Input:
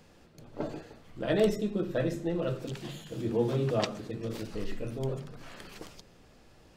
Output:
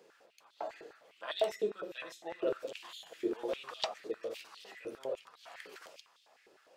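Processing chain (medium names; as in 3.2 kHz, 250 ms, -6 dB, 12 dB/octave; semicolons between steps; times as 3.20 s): on a send at -12 dB: reverberation RT60 0.30 s, pre-delay 6 ms; on the sum: step-sequenced high-pass 9.9 Hz 410–3600 Hz; trim -6.5 dB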